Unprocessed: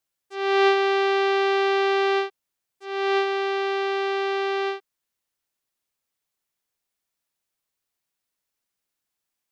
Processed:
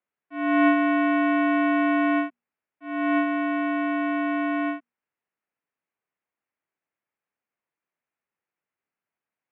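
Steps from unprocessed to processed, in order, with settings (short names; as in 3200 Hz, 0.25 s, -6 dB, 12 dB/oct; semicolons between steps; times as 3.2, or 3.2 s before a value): mistuned SSB -100 Hz 220–2600 Hz; notches 60/120/180/240 Hz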